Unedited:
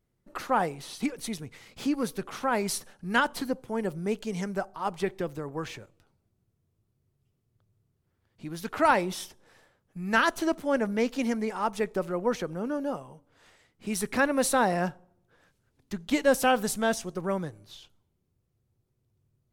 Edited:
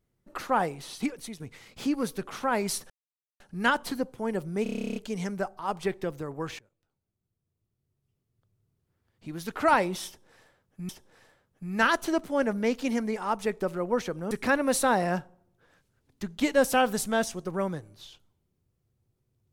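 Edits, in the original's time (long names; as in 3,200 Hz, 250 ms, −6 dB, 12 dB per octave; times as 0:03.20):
0:01.04–0:01.40: fade out, to −10 dB
0:02.90: splice in silence 0.50 s
0:04.13: stutter 0.03 s, 12 plays
0:05.76–0:08.47: fade in, from −20.5 dB
0:09.23–0:10.06: repeat, 2 plays
0:12.65–0:14.01: remove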